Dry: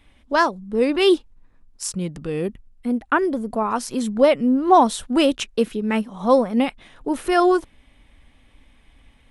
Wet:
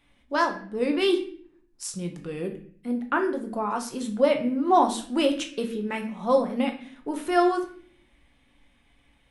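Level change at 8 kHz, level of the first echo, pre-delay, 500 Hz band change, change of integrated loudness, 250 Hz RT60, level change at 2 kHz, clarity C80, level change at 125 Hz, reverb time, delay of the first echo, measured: -5.5 dB, no echo, 6 ms, -5.5 dB, -5.5 dB, 0.80 s, -5.0 dB, 14.0 dB, -6.5 dB, 0.50 s, no echo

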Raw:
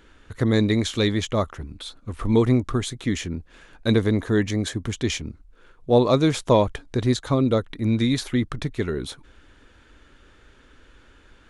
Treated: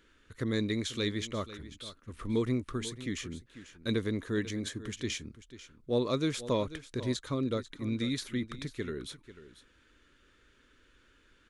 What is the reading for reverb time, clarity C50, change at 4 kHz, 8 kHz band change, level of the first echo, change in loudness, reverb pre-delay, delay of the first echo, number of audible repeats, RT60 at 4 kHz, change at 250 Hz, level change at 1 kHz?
no reverb, no reverb, -8.0 dB, -8.0 dB, -15.0 dB, -11.5 dB, no reverb, 492 ms, 1, no reverb, -11.0 dB, -14.0 dB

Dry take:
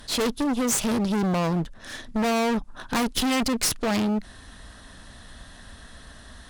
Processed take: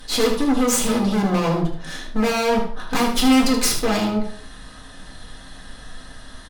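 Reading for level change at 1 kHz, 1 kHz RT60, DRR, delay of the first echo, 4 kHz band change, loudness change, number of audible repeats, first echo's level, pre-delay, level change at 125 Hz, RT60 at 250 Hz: +5.0 dB, 0.50 s, -2.5 dB, 76 ms, +5.0 dB, +5.0 dB, 1, -8.5 dB, 4 ms, +3.5 dB, 0.60 s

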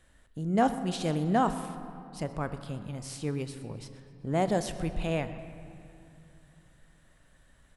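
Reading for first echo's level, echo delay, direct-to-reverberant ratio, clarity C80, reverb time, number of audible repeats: -19.5 dB, 126 ms, 9.5 dB, 11.5 dB, 2.7 s, 1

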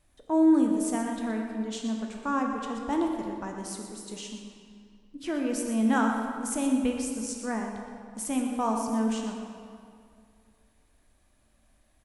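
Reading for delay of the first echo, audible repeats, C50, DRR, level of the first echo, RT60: 122 ms, 1, 3.0 dB, 1.0 dB, -10.0 dB, 2.3 s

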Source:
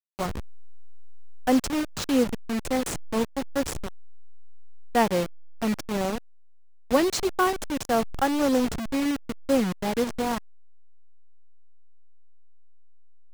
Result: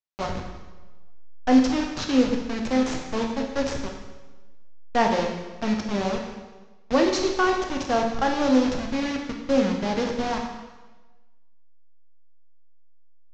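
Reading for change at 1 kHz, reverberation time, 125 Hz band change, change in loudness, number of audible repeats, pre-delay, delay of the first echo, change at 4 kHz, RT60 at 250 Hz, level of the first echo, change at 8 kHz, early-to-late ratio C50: +2.0 dB, 1.3 s, +1.0 dB, +2.0 dB, no echo, 7 ms, no echo, +2.0 dB, 1.2 s, no echo, -3.0 dB, 4.5 dB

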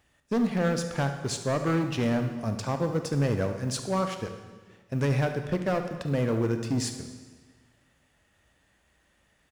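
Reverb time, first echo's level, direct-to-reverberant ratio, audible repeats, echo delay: 1.4 s, -14.5 dB, 6.5 dB, 1, 71 ms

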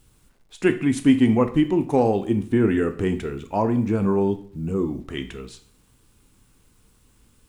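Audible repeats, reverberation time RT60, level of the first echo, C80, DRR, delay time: no echo, 0.50 s, no echo, 17.5 dB, 8.5 dB, no echo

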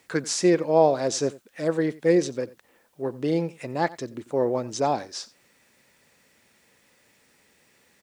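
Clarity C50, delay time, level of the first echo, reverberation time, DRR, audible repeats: no reverb, 89 ms, -20.0 dB, no reverb, no reverb, 1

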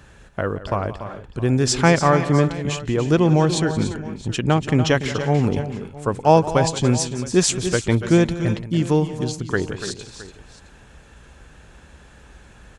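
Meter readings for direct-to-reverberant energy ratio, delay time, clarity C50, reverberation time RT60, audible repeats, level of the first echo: no reverb, 175 ms, no reverb, no reverb, 4, -15.5 dB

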